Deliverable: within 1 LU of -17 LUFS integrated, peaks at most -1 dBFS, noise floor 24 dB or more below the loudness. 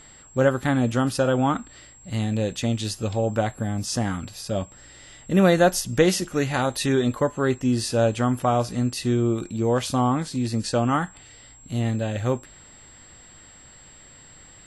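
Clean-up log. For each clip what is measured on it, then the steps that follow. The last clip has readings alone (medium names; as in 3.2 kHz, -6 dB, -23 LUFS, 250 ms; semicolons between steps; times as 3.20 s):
steady tone 7.6 kHz; tone level -48 dBFS; loudness -23.5 LUFS; peak level -4.5 dBFS; loudness target -17.0 LUFS
-> band-stop 7.6 kHz, Q 30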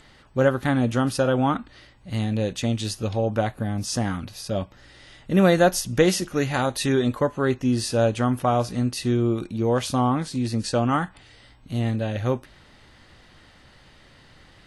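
steady tone not found; loudness -23.5 LUFS; peak level -4.5 dBFS; loudness target -17.0 LUFS
-> trim +6.5 dB; peak limiter -1 dBFS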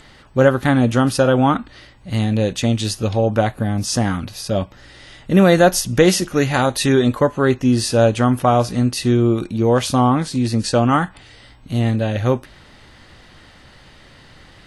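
loudness -17.5 LUFS; peak level -1.0 dBFS; noise floor -47 dBFS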